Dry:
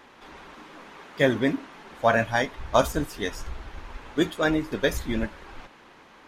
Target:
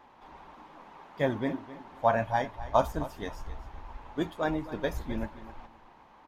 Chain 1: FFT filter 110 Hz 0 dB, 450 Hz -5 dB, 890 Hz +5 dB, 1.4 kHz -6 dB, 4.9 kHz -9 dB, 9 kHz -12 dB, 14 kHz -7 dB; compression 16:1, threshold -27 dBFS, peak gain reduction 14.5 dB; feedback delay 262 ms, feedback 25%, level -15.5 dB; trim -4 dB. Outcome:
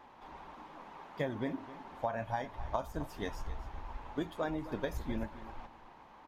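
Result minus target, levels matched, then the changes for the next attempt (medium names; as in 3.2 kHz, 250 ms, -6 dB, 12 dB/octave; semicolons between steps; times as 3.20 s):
compression: peak gain reduction +14.5 dB
remove: compression 16:1, threshold -27 dBFS, peak gain reduction 14.5 dB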